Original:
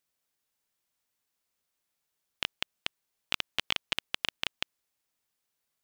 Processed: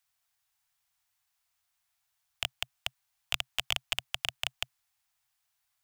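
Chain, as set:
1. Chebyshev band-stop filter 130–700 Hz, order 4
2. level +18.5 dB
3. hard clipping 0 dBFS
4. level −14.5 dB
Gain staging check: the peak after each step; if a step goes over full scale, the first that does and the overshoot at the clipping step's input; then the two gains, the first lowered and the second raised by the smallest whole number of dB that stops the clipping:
−10.0, +8.5, 0.0, −14.5 dBFS
step 2, 8.5 dB
step 2 +9.5 dB, step 4 −5.5 dB

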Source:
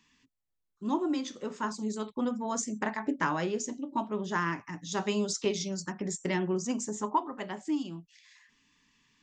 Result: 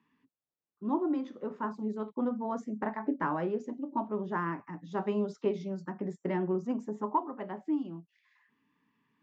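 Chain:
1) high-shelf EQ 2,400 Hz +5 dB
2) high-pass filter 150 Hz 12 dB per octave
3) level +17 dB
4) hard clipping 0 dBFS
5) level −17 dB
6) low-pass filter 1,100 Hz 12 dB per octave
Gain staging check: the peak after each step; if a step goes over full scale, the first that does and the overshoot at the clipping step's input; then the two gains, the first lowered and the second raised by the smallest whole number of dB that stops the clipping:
−13.5, −13.5, +3.5, 0.0, −17.0, −17.5 dBFS
step 3, 3.5 dB
step 3 +13 dB, step 5 −13 dB

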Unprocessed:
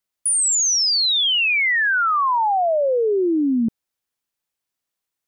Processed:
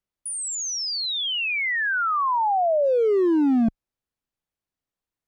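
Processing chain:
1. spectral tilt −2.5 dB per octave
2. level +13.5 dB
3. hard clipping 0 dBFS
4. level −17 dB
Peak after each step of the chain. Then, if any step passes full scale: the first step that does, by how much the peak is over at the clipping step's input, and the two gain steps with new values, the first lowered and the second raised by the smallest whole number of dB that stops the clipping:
−10.0, +3.5, 0.0, −17.0 dBFS
step 2, 3.5 dB
step 2 +9.5 dB, step 4 −13 dB

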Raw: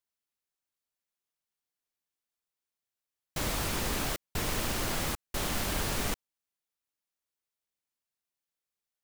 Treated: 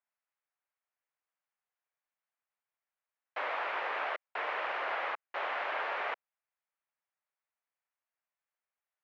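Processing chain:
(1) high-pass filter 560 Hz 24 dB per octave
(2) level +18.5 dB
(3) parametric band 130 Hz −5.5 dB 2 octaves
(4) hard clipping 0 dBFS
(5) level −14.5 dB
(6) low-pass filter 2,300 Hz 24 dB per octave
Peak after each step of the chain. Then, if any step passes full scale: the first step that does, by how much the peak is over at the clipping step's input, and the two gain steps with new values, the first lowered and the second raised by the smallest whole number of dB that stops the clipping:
−22.0, −3.5, −3.5, −3.5, −18.0, −22.0 dBFS
no step passes full scale

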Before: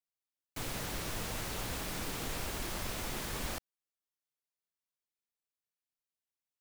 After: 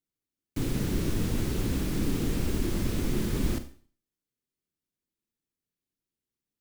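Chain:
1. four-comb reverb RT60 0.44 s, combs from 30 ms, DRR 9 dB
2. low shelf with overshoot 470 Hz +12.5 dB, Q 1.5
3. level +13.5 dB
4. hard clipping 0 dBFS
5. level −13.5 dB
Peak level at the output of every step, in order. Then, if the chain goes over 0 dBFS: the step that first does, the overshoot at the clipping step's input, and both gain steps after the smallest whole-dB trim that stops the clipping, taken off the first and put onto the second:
−24.5, −15.5, −2.0, −2.0, −15.5 dBFS
no step passes full scale

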